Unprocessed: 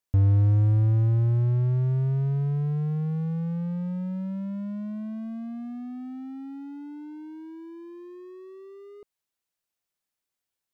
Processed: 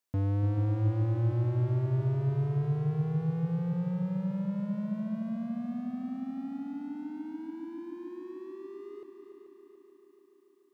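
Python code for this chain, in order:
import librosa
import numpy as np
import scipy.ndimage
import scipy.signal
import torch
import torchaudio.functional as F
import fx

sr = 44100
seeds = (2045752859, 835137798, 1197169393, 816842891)

y = scipy.signal.sosfilt(scipy.signal.butter(2, 170.0, 'highpass', fs=sr, output='sos'), x)
y = fx.echo_heads(y, sr, ms=145, heads='second and third', feedback_pct=63, wet_db=-10.0)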